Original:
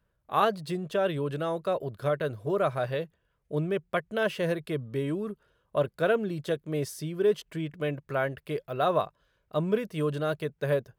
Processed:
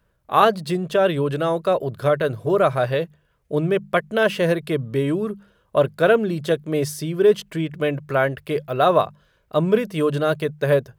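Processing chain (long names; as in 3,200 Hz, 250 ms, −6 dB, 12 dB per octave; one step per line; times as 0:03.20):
mains-hum notches 50/100/150/200 Hz
level +9 dB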